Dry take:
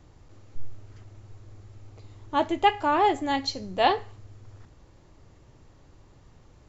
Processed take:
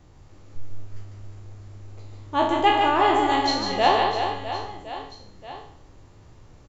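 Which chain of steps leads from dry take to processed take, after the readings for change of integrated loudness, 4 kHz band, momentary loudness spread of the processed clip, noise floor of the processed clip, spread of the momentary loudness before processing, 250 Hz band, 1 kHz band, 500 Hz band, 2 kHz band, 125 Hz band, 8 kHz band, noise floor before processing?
+3.0 dB, +5.5 dB, 18 LU, -51 dBFS, 7 LU, +3.5 dB, +4.5 dB, +4.0 dB, +5.0 dB, +5.5 dB, n/a, -55 dBFS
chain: spectral trails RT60 0.59 s; reverse bouncing-ball echo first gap 0.15 s, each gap 1.4×, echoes 5

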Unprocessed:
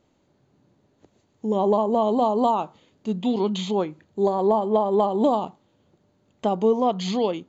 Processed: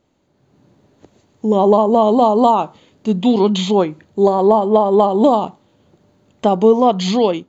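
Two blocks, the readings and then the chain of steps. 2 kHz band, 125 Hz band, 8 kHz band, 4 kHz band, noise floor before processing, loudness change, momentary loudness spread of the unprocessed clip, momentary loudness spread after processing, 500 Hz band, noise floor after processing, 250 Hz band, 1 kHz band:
+9.0 dB, +8.5 dB, n/a, +9.0 dB, -66 dBFS, +8.5 dB, 10 LU, 9 LU, +8.5 dB, -61 dBFS, +8.5 dB, +8.5 dB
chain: AGC gain up to 9 dB; gain +1 dB

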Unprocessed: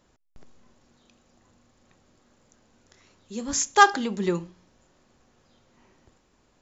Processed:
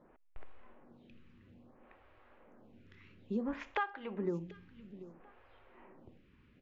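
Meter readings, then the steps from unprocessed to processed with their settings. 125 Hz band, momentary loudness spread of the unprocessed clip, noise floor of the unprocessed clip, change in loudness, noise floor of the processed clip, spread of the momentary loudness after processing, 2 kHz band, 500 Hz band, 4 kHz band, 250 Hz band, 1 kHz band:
-8.5 dB, 17 LU, -66 dBFS, -17.0 dB, -65 dBFS, 17 LU, -18.5 dB, -10.5 dB, -23.0 dB, -8.0 dB, -19.5 dB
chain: Chebyshev low-pass 2600 Hz, order 3; compressor 16:1, threshold -35 dBFS, peak gain reduction 26 dB; on a send: feedback echo 0.738 s, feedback 18%, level -16 dB; on the sum: photocell phaser 0.59 Hz; gain +4.5 dB

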